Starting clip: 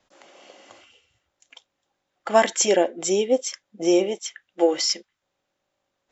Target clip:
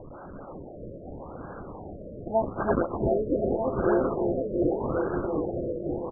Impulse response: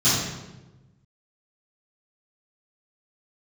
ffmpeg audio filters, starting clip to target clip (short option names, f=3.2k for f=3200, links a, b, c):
-filter_complex "[0:a]aeval=exprs='val(0)+0.5*0.0355*sgn(val(0))':c=same,asplit=2[a][b];[b]aecho=0:1:334|668|1002|1336|1670|2004|2338|2672:0.668|0.381|0.217|0.124|0.0706|0.0402|0.0229|0.0131[c];[a][c]amix=inputs=2:normalize=0,acrusher=samples=31:mix=1:aa=0.000001:lfo=1:lforange=49.6:lforate=3.7,asplit=2[d][e];[e]aecho=0:1:730|1241|1599|1849|2024:0.631|0.398|0.251|0.158|0.1[f];[d][f]amix=inputs=2:normalize=0,afftfilt=real='re*lt(b*sr/1024,640*pow(1700/640,0.5+0.5*sin(2*PI*0.83*pts/sr)))':imag='im*lt(b*sr/1024,640*pow(1700/640,0.5+0.5*sin(2*PI*0.83*pts/sr)))':win_size=1024:overlap=0.75,volume=-8dB"